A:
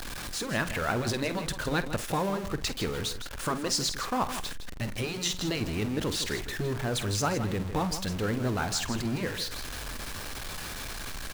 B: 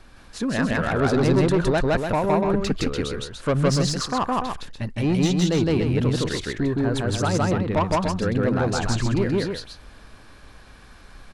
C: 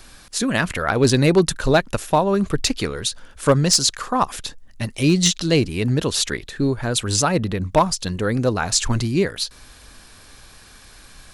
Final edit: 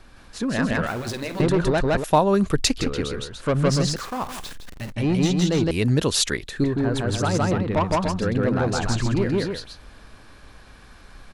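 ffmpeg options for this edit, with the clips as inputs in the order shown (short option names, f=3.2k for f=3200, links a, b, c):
-filter_complex "[0:a]asplit=2[a][b];[2:a]asplit=2[c][d];[1:a]asplit=5[e][f][g][h][i];[e]atrim=end=0.872[j];[a]atrim=start=0.868:end=1.402[k];[f]atrim=start=1.398:end=2.042[l];[c]atrim=start=2.038:end=2.782[m];[g]atrim=start=2.778:end=3.962[n];[b]atrim=start=3.958:end=4.922[o];[h]atrim=start=4.918:end=5.712[p];[d]atrim=start=5.708:end=6.642[q];[i]atrim=start=6.638[r];[j][k]acrossfade=d=0.004:c1=hsin:c2=hsin[s];[s][l]acrossfade=d=0.004:c1=hsin:c2=hsin[t];[t][m]acrossfade=d=0.004:c1=hsin:c2=hsin[u];[u][n]acrossfade=d=0.004:c1=hsin:c2=hsin[v];[v][o]acrossfade=d=0.004:c1=hsin:c2=hsin[w];[w][p]acrossfade=d=0.004:c1=hsin:c2=hsin[x];[x][q]acrossfade=d=0.004:c1=hsin:c2=hsin[y];[y][r]acrossfade=d=0.004:c1=hsin:c2=hsin"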